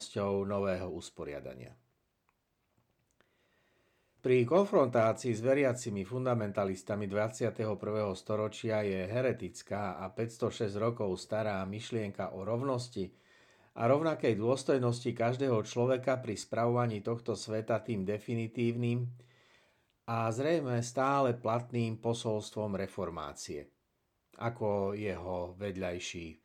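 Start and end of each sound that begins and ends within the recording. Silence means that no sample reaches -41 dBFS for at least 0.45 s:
4.24–13.07
13.77–19.1
20.08–23.61

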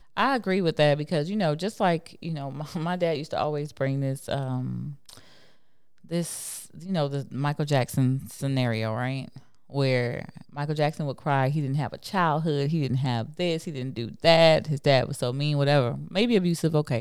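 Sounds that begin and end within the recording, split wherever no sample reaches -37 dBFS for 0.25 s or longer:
6.11–9.38

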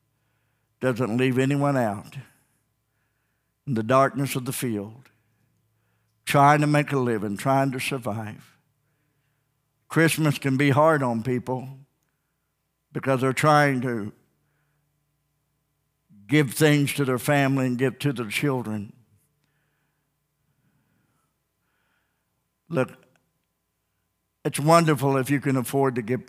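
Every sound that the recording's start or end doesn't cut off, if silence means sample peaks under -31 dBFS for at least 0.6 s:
0.83–2.2
3.68–4.86
6.27–8.34
9.91–11.65
12.96–14.09
16.29–18.84
22.71–22.93

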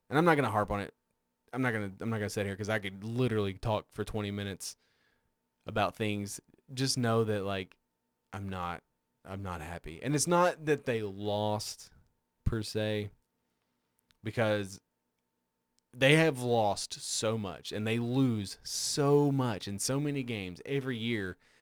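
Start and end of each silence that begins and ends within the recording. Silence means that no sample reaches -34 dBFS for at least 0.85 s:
4.71–5.68
13.05–14.26
14.74–16.01

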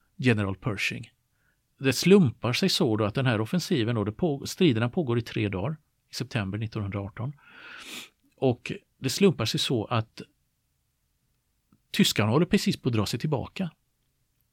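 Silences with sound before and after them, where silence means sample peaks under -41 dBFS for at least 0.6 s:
1.05–1.81
10.23–11.94

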